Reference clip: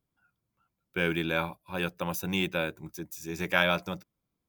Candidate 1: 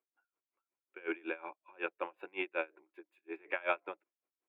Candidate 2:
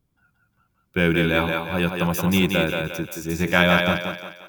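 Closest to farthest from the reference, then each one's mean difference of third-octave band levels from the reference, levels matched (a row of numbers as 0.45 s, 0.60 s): 2, 1; 6.0 dB, 16.0 dB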